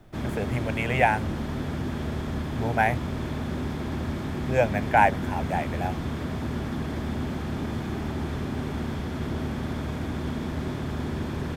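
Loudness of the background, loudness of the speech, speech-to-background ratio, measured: −31.0 LKFS, −26.0 LKFS, 5.0 dB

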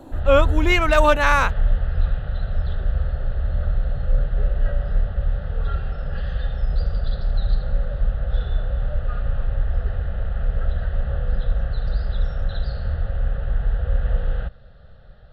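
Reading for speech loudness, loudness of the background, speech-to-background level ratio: −18.5 LKFS, −26.0 LKFS, 7.5 dB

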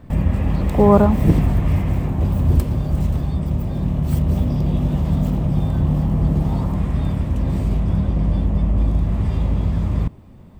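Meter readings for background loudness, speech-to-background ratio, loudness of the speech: −20.5 LKFS, 3.0 dB, −17.5 LKFS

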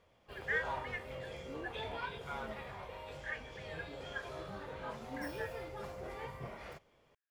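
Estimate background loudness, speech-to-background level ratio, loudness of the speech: −44.5 LKFS, 0.5 dB, −44.0 LKFS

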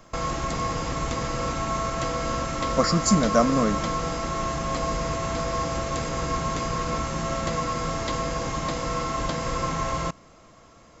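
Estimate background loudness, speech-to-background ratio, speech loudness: −28.0 LKFS, 5.0 dB, −23.0 LKFS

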